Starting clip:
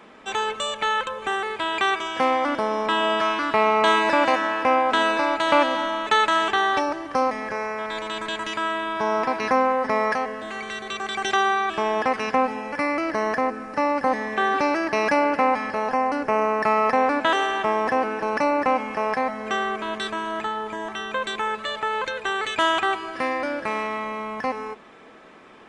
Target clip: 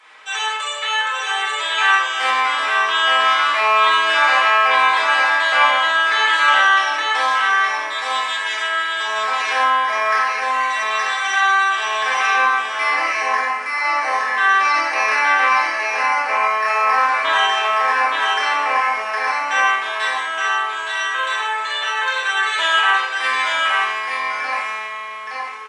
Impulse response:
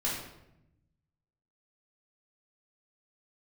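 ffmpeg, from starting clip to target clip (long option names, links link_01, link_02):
-filter_complex "[0:a]highpass=1400,acrossover=split=2600[link_01][link_02];[link_02]alimiter=level_in=1.5dB:limit=-24dB:level=0:latency=1:release=453,volume=-1.5dB[link_03];[link_01][link_03]amix=inputs=2:normalize=0,aecho=1:1:869:0.708[link_04];[1:a]atrim=start_sample=2205,atrim=end_sample=4410,asetrate=22932,aresample=44100[link_05];[link_04][link_05]afir=irnorm=-1:irlink=0,volume=-1dB"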